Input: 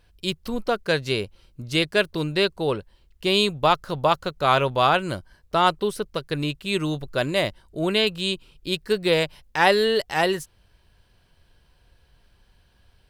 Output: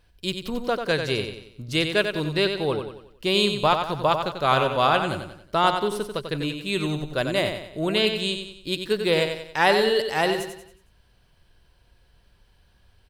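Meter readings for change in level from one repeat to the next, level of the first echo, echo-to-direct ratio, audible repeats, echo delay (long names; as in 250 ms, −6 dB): −7.5 dB, −7.0 dB, −6.0 dB, 4, 92 ms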